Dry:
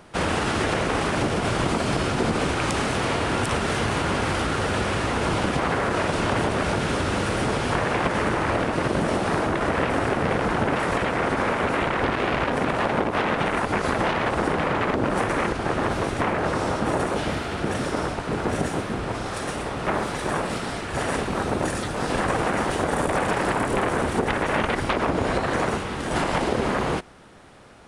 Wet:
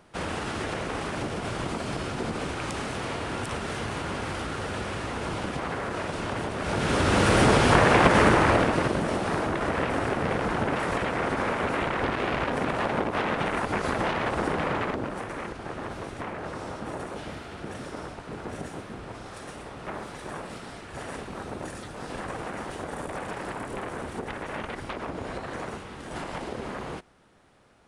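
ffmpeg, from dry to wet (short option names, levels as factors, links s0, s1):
-af "volume=1.78,afade=t=in:st=6.59:d=0.78:silence=0.223872,afade=t=out:st=8.25:d=0.74:silence=0.354813,afade=t=out:st=14.74:d=0.42:silence=0.421697"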